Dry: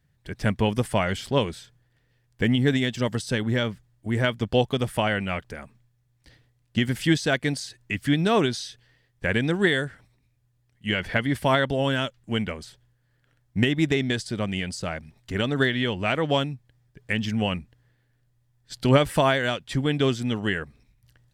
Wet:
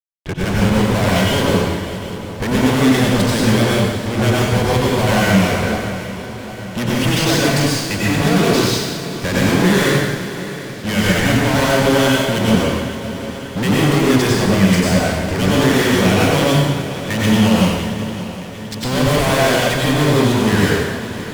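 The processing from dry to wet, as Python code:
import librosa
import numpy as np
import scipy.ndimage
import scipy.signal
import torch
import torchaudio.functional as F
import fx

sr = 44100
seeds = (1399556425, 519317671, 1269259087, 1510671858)

y = fx.wiener(x, sr, points=9)
y = fx.notch(y, sr, hz=1300.0, q=5.3)
y = fx.fuzz(y, sr, gain_db=41.0, gate_db=-45.0)
y = fx.echo_swing(y, sr, ms=750, ratio=3, feedback_pct=60, wet_db=-15)
y = fx.rev_plate(y, sr, seeds[0], rt60_s=1.3, hf_ratio=1.0, predelay_ms=80, drr_db=-5.5)
y = y * librosa.db_to_amplitude(-6.5)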